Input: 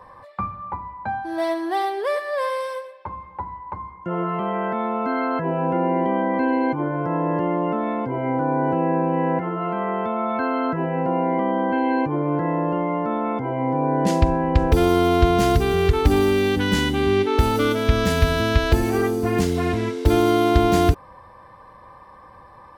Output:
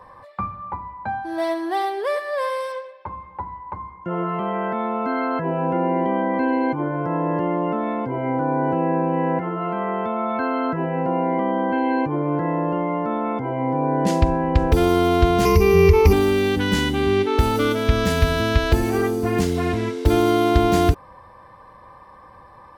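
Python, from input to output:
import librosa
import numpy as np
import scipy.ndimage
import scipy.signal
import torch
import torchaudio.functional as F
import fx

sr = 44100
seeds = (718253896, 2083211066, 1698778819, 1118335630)

y = fx.lowpass(x, sr, hz=5600.0, slope=12, at=(2.72, 4.11))
y = fx.ripple_eq(y, sr, per_octave=0.82, db=16, at=(15.45, 16.13))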